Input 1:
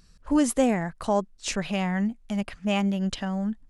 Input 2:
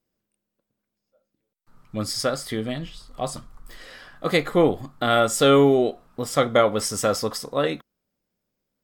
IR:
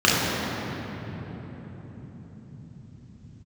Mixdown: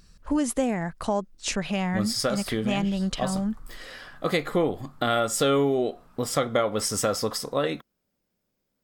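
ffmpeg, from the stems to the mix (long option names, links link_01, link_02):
-filter_complex "[0:a]volume=2dB[link_01];[1:a]volume=1.5dB[link_02];[link_01][link_02]amix=inputs=2:normalize=0,acompressor=threshold=-23dB:ratio=2.5"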